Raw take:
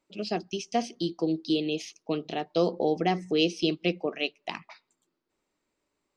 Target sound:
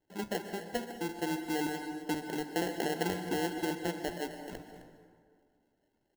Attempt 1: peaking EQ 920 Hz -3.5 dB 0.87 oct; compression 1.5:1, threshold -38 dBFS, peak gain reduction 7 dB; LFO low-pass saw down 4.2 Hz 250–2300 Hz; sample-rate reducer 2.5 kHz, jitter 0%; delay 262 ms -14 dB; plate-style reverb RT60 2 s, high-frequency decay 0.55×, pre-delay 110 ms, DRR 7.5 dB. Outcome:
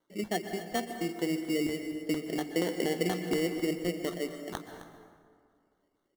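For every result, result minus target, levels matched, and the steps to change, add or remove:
sample-rate reducer: distortion -9 dB; compression: peak gain reduction -3 dB
change: sample-rate reducer 1.2 kHz, jitter 0%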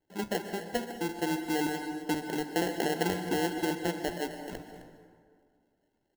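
compression: peak gain reduction -3 dB
change: compression 1.5:1, threshold -47.5 dBFS, peak gain reduction 10 dB

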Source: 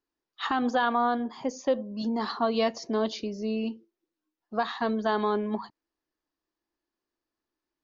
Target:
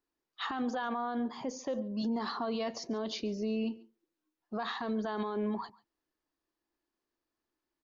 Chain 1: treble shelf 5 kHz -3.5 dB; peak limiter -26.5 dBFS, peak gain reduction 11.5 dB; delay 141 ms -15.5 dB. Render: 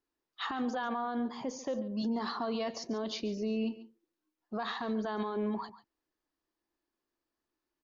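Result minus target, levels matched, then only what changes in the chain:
echo-to-direct +7.5 dB
change: delay 141 ms -23 dB

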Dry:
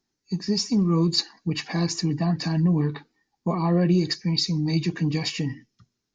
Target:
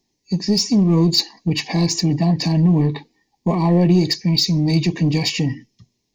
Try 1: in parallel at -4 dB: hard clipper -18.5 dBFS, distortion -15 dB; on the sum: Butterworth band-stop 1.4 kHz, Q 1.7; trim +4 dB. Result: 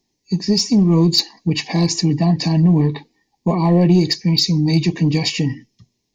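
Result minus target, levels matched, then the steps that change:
hard clipper: distortion -7 dB
change: hard clipper -25 dBFS, distortion -7 dB

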